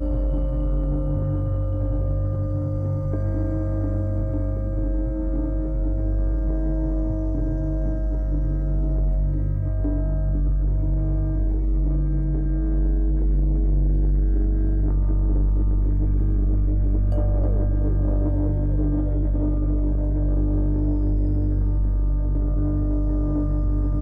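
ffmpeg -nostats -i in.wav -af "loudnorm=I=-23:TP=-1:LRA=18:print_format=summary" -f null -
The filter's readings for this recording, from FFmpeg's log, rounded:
Input Integrated:    -24.2 LUFS
Input True Peak:     -15.6 dBTP
Input LRA:             2.7 LU
Input Threshold:     -34.2 LUFS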